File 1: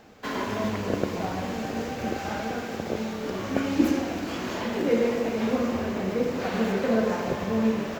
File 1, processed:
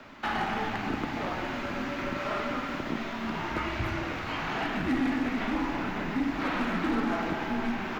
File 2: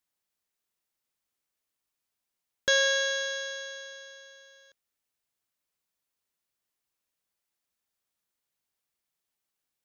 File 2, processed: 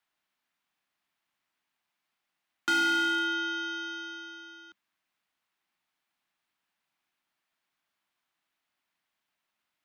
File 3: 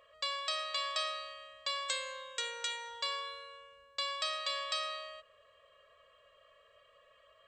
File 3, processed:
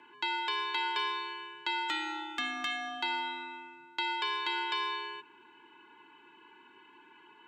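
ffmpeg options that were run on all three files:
ffmpeg -i in.wav -filter_complex "[0:a]afreqshift=-210,bandreject=frequency=540:width=16,acrossover=split=3800[link_01][link_02];[link_02]acompressor=threshold=-46dB:ratio=4:attack=1:release=60[link_03];[link_01][link_03]amix=inputs=2:normalize=0,equalizer=frequency=450:width=2.1:gain=-11,asplit=2[link_04][link_05];[link_05]acompressor=threshold=-41dB:ratio=6,volume=1dB[link_06];[link_04][link_06]amix=inputs=2:normalize=0,acrossover=split=210 3600:gain=0.141 1 0.178[link_07][link_08][link_09];[link_07][link_08][link_09]amix=inputs=3:normalize=0,volume=26dB,asoftclip=hard,volume=-26dB,volume=3dB" out.wav

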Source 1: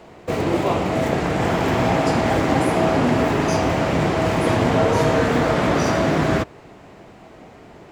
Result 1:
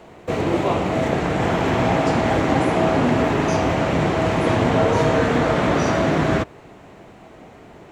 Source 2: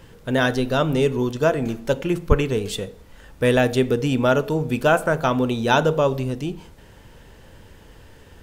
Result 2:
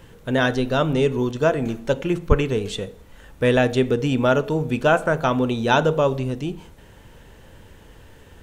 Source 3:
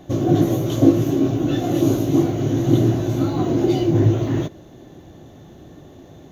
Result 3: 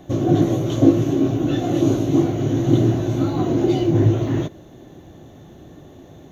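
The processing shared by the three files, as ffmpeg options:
ffmpeg -i in.wav -filter_complex "[0:a]acrossover=split=8200[link_01][link_02];[link_02]acompressor=threshold=-58dB:ratio=4:attack=1:release=60[link_03];[link_01][link_03]amix=inputs=2:normalize=0,equalizer=frequency=4900:width=5.5:gain=-5" out.wav

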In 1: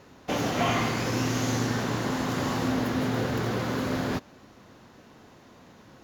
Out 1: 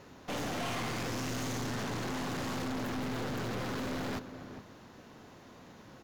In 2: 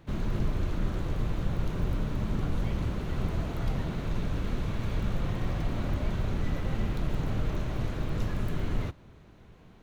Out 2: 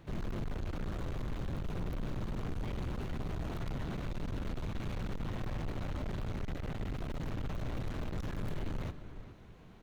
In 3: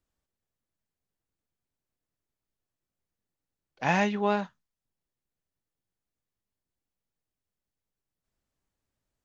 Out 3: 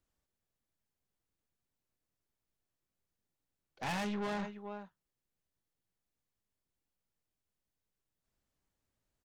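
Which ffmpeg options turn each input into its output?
ffmpeg -i in.wav -filter_complex "[0:a]asplit=2[link_01][link_02];[link_02]adelay=419.8,volume=-17dB,highshelf=frequency=4000:gain=-9.45[link_03];[link_01][link_03]amix=inputs=2:normalize=0,aeval=exprs='(tanh(50.1*val(0)+0.35)-tanh(0.35))/50.1':channel_layout=same" out.wav

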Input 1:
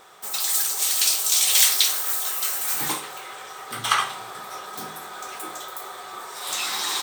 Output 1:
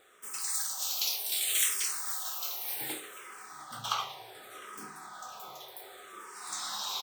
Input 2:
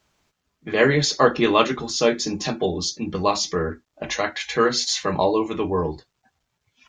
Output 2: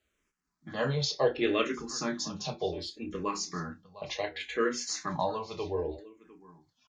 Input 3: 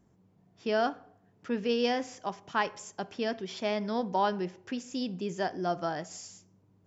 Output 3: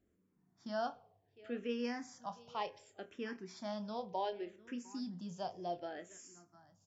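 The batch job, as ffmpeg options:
ffmpeg -i in.wav -filter_complex "[0:a]asplit=2[link_01][link_02];[link_02]adelay=29,volume=-11.5dB[link_03];[link_01][link_03]amix=inputs=2:normalize=0,asplit=2[link_04][link_05];[link_05]aecho=0:1:704:0.1[link_06];[link_04][link_06]amix=inputs=2:normalize=0,asplit=2[link_07][link_08];[link_08]afreqshift=-0.67[link_09];[link_07][link_09]amix=inputs=2:normalize=1,volume=-8dB" out.wav

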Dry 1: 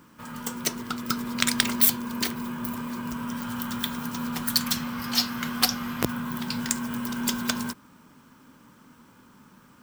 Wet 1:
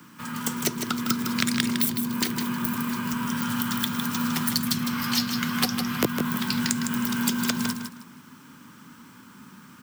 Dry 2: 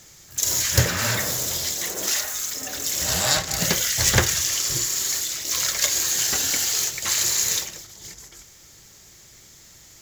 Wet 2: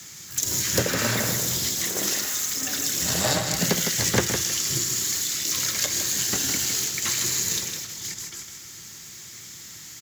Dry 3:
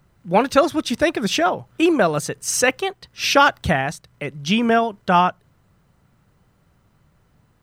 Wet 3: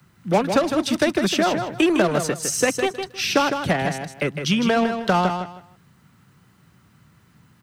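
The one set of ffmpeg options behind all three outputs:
ffmpeg -i in.wav -filter_complex "[0:a]aeval=exprs='0.891*(cos(1*acos(clip(val(0)/0.891,-1,1)))-cos(1*PI/2))+0.0282*(cos(7*acos(clip(val(0)/0.891,-1,1)))-cos(7*PI/2))':channel_layout=same,acrossover=split=190|600[link_01][link_02][link_03];[link_01]acompressor=threshold=-38dB:ratio=4[link_04];[link_02]acompressor=threshold=-31dB:ratio=4[link_05];[link_03]acompressor=threshold=-34dB:ratio=4[link_06];[link_04][link_05][link_06]amix=inputs=3:normalize=0,highpass=120,acrossover=split=390|850|3200[link_07][link_08][link_09][link_10];[link_08]acrusher=bits=5:mix=0:aa=0.5[link_11];[link_07][link_11][link_09][link_10]amix=inputs=4:normalize=0,aecho=1:1:157|314|471:0.447|0.0983|0.0216,volume=9dB" out.wav

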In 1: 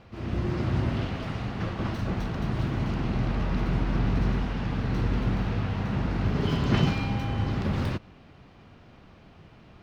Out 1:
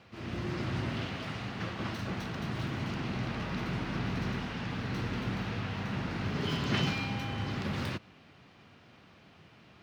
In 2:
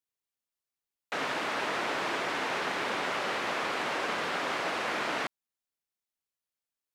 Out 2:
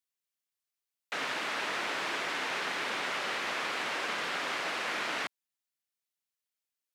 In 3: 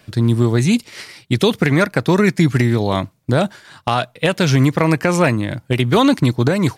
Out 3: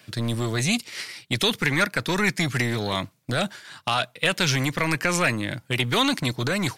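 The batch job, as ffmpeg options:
ffmpeg -i in.wav -filter_complex "[0:a]highpass=100,acrossover=split=1400[link_01][link_02];[link_01]asoftclip=type=tanh:threshold=-16dB[link_03];[link_02]acontrast=59[link_04];[link_03][link_04]amix=inputs=2:normalize=0,volume=-5.5dB" out.wav

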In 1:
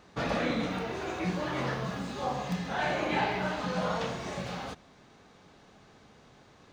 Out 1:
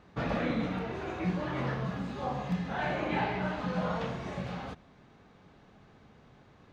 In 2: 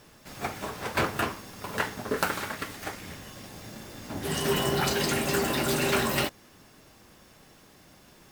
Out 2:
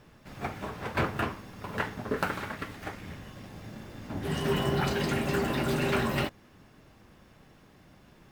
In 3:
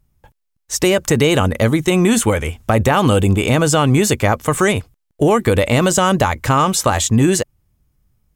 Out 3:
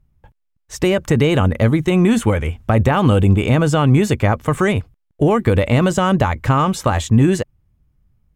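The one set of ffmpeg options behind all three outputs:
ffmpeg -i in.wav -af "bass=frequency=250:gain=5,treble=frequency=4000:gain=-10,volume=-2.5dB" out.wav

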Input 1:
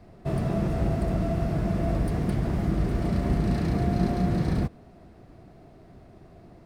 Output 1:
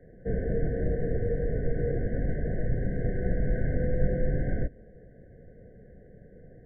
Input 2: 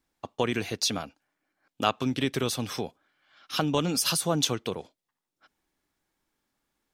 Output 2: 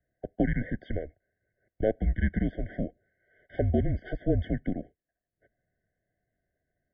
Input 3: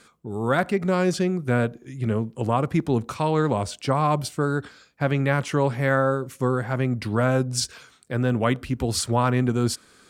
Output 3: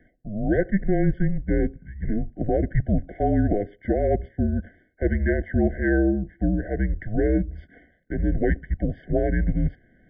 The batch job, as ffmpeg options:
ffmpeg -i in.wav -af "highpass=frequency=160:width_type=q:width=0.5412,highpass=frequency=160:width_type=q:width=1.307,lowpass=frequency=2100:width_type=q:width=0.5176,lowpass=frequency=2100:width_type=q:width=0.7071,lowpass=frequency=2100:width_type=q:width=1.932,afreqshift=-200,afftfilt=real='re*eq(mod(floor(b*sr/1024/740),2),0)':imag='im*eq(mod(floor(b*sr/1024/740),2),0)':win_size=1024:overlap=0.75,volume=2.5dB" out.wav

